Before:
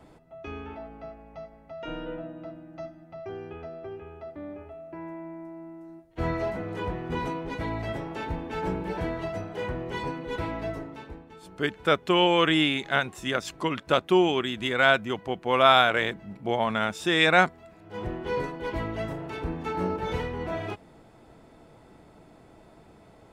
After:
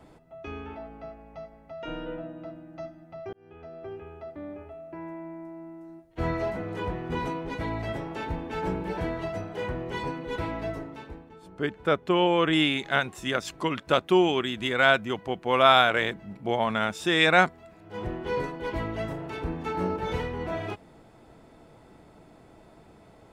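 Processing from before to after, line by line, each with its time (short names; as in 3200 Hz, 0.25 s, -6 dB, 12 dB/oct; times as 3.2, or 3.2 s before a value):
3.33–3.89 fade in
11.29–12.53 high shelf 2000 Hz -9 dB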